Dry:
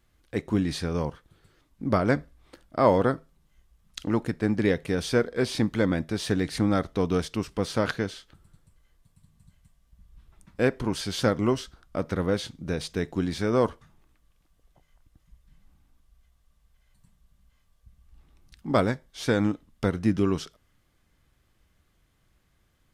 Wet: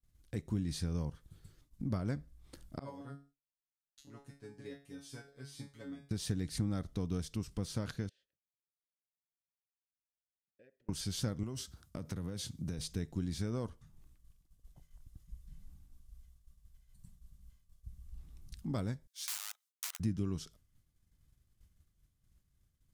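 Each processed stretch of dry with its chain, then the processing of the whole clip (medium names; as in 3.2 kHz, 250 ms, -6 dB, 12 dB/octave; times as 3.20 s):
2.79–6.11 s: bass shelf 200 Hz -7.5 dB + feedback comb 140 Hz, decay 0.33 s, mix 100% + upward expansion, over -43 dBFS
8.09–10.89 s: band-stop 500 Hz, Q 8 + compression 5:1, threshold -44 dBFS + vowel filter e
11.43–12.79 s: high-pass 67 Hz 24 dB/octave + treble shelf 6.3 kHz +4.5 dB + compression, threshold -27 dBFS
19.07–20.00 s: companding laws mixed up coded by A + integer overflow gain 23.5 dB + Bessel high-pass 1.4 kHz, order 8
whole clip: compression 2:1, threshold -42 dBFS; expander -58 dBFS; tone controls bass +14 dB, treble +12 dB; trim -8 dB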